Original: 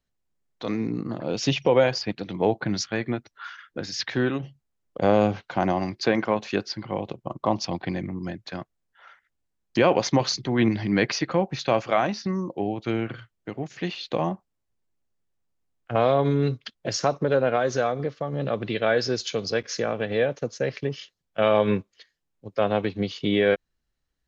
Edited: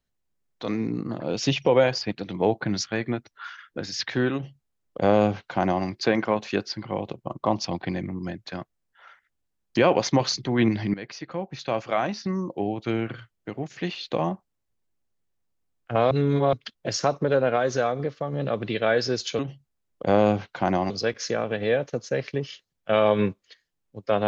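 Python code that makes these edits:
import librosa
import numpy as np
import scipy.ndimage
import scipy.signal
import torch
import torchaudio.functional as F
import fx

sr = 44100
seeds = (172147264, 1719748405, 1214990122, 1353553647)

y = fx.edit(x, sr, fx.duplicate(start_s=4.34, length_s=1.51, to_s=19.39),
    fx.fade_in_from(start_s=10.94, length_s=1.48, floor_db=-18.0),
    fx.reverse_span(start_s=16.11, length_s=0.42), tone=tone)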